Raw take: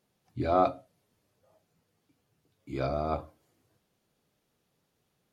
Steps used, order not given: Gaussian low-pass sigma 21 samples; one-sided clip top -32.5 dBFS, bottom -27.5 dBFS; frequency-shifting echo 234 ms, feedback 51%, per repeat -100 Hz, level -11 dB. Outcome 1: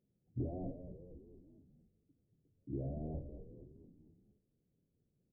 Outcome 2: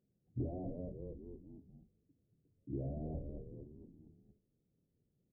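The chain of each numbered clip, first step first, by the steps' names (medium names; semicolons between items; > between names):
one-sided clip > frequency-shifting echo > Gaussian low-pass; frequency-shifting echo > one-sided clip > Gaussian low-pass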